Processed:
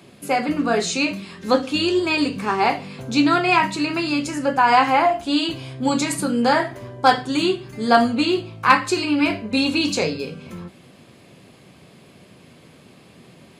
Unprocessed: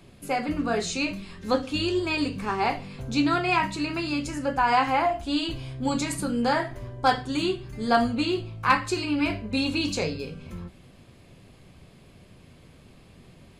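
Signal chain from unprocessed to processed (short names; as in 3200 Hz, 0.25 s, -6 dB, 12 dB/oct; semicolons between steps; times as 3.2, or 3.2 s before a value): HPF 160 Hz 12 dB/oct; gain +6.5 dB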